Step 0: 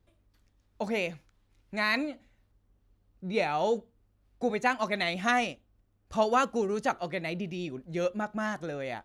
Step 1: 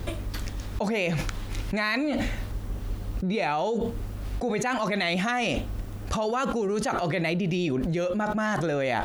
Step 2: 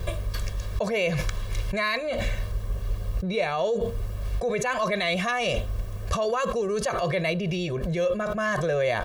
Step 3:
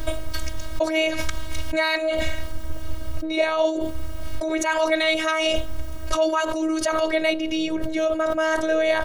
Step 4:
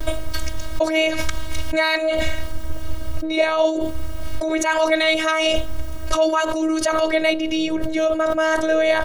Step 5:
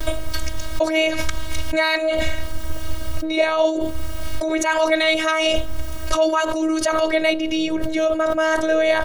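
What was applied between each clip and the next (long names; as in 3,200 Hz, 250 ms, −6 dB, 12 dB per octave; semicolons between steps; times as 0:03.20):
envelope flattener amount 100%; level −5 dB
comb filter 1.8 ms, depth 94%; level −1.5 dB
phases set to zero 318 Hz; level +7 dB
noise gate with hold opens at −23 dBFS; level +3 dB
one half of a high-frequency compander encoder only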